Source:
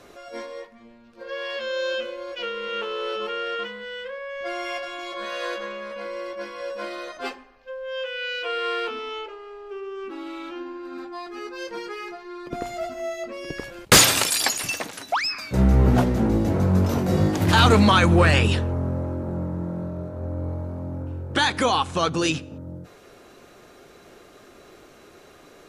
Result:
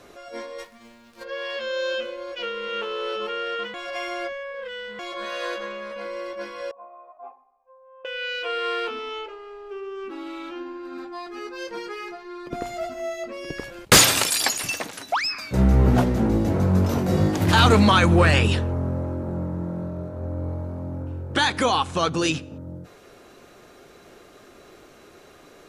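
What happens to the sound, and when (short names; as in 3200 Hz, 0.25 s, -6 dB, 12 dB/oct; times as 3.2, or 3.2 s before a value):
0.58–1.23 spectral whitening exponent 0.6
3.74–4.99 reverse
6.71–8.05 vocal tract filter a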